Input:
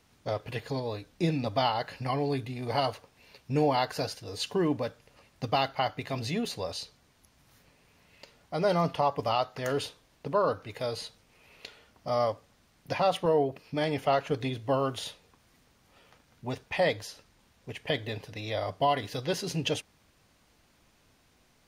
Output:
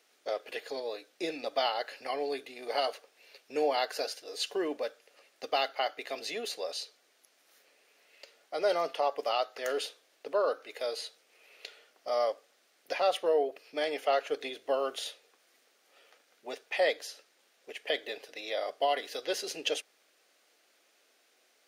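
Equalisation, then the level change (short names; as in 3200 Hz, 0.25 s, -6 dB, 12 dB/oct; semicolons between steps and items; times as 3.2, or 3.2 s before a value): HPF 390 Hz 24 dB/oct; bell 970 Hz -10 dB 0.41 oct; 0.0 dB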